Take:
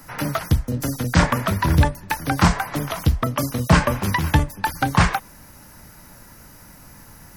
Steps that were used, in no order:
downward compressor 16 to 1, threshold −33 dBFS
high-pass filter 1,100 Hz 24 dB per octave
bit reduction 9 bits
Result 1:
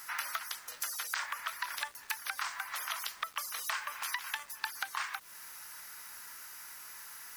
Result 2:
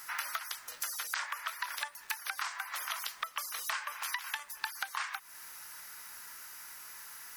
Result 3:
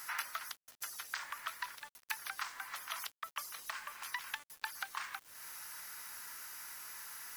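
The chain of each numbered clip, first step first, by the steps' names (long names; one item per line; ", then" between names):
high-pass filter, then downward compressor, then bit reduction
high-pass filter, then bit reduction, then downward compressor
downward compressor, then high-pass filter, then bit reduction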